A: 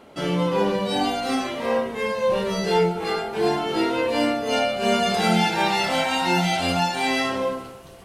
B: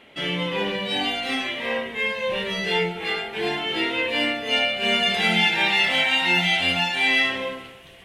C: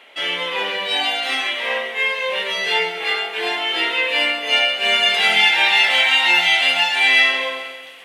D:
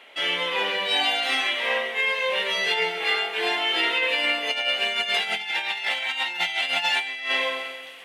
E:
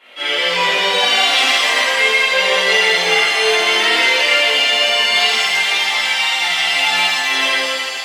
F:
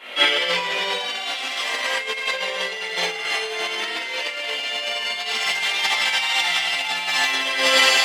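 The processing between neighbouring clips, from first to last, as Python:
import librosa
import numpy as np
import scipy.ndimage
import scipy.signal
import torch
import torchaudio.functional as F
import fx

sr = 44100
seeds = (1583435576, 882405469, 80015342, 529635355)

y1 = fx.band_shelf(x, sr, hz=2500.0, db=13.0, octaves=1.3)
y1 = y1 * 10.0 ** (-5.5 / 20.0)
y2 = scipy.signal.sosfilt(scipy.signal.butter(2, 610.0, 'highpass', fs=sr, output='sos'), y1)
y2 = fx.echo_feedback(y2, sr, ms=132, feedback_pct=58, wet_db=-12.5)
y2 = y2 * 10.0 ** (5.5 / 20.0)
y3 = fx.over_compress(y2, sr, threshold_db=-19.0, ratio=-0.5)
y3 = y3 * 10.0 ** (-4.5 / 20.0)
y4 = fx.chorus_voices(y3, sr, voices=2, hz=0.35, base_ms=19, depth_ms=3.7, mix_pct=55)
y4 = fx.rev_shimmer(y4, sr, seeds[0], rt60_s=2.1, semitones=7, shimmer_db=-8, drr_db=-9.5)
y4 = y4 * 10.0 ** (2.5 / 20.0)
y5 = fx.over_compress(y4, sr, threshold_db=-21.0, ratio=-0.5)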